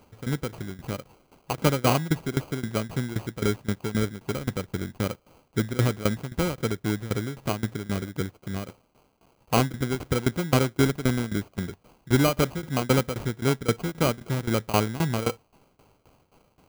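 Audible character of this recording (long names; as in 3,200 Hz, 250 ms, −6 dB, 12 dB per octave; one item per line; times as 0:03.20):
a quantiser's noise floor 10 bits, dither triangular
tremolo saw down 3.8 Hz, depth 90%
aliases and images of a low sample rate 1,800 Hz, jitter 0%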